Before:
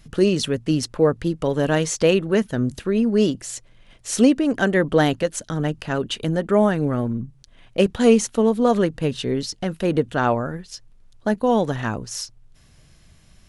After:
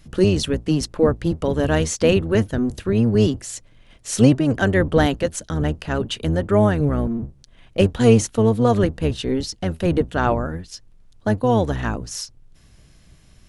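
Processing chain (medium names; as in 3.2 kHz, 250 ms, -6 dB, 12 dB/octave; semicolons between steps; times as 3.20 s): octave divider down 1 oct, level -1 dB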